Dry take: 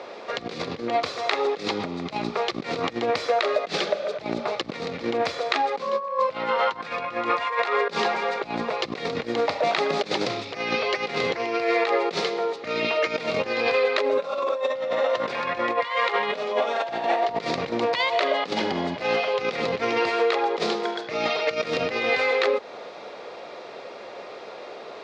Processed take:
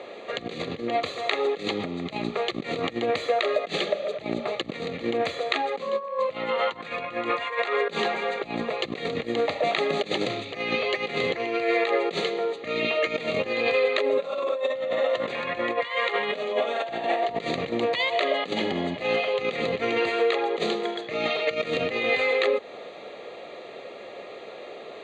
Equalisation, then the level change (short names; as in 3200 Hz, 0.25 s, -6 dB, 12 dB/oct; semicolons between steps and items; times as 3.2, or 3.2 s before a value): Butterworth band-stop 1500 Hz, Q 6.8; Butterworth band-stop 5300 Hz, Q 2.7; bell 960 Hz -9 dB 0.49 oct; 0.0 dB